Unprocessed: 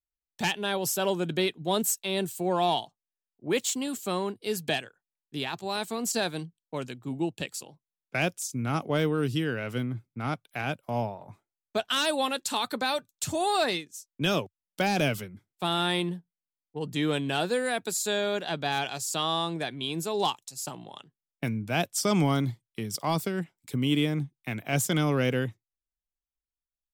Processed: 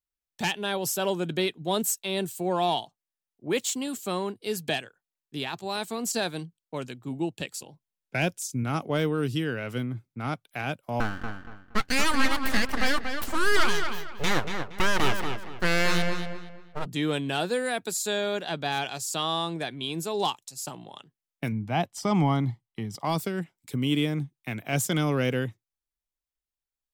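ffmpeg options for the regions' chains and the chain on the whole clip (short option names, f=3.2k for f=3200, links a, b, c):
-filter_complex "[0:a]asettb=1/sr,asplit=3[a][b][c];[a]atrim=end=7.544[d];[b]atrim=start=7.54:end=8.64,asetpts=PTS-STARTPTS,afade=t=in:d=0.004:c=qsin,afade=t=out:st=1.096:d=0.004:c=qsin,asuperstop=centerf=1200:order=8:qfactor=6.5,lowshelf=f=170:g=5.5[e];[c]atrim=start=8.636[f];[d][e]acrossfade=d=0.004:c1=hsin:c2=qsin[g];[g][f]acrossfade=d=0.004:c1=qsin:c2=hsin,asettb=1/sr,asplit=3[h][i][j];[h]atrim=end=11.004[k];[i]atrim=start=11:end=16.86,asetpts=PTS-STARTPTS,afade=t=in:d=0.004:c=qsin,afade=t=out:st=5.856:d=0.004:c=qsin,equalizer=f=910:w=0.82:g=9,aeval=exprs='abs(val(0))':c=same,asplit=2[l][m];[m]adelay=234,lowpass=f=3.9k:p=1,volume=-6dB,asplit=2[n][o];[o]adelay=234,lowpass=f=3.9k:p=1,volume=0.3,asplit=2[p][q];[q]adelay=234,lowpass=f=3.9k:p=1,volume=0.3,asplit=2[r][s];[s]adelay=234,lowpass=f=3.9k:p=1,volume=0.3[t];[l][n][p][r][t]amix=inputs=5:normalize=0,atrim=end_sample=258426[u];[j]atrim=start=16.856[v];[k][u]acrossfade=d=0.004:c1=hsin:c2=qsin[w];[w][v]acrossfade=d=0.004:c1=qsin:c2=hsin,asettb=1/sr,asplit=3[x][y][z];[x]atrim=end=21.524[aa];[y]atrim=start=21.52:end=23.05,asetpts=PTS-STARTPTS,afade=t=in:d=0.004:c=qsin,afade=t=out:st=1.526:d=0.004:c=qsin,lowpass=f=2.2k:p=1,equalizer=f=790:t=o:w=0.32:g=6,aecho=1:1:1:0.35,atrim=end_sample=67473[ab];[z]atrim=start=23.046[ac];[aa][ab]acrossfade=d=0.004:c1=hsin:c2=qsin[ad];[ad][ac]acrossfade=d=0.004:c1=qsin:c2=hsin"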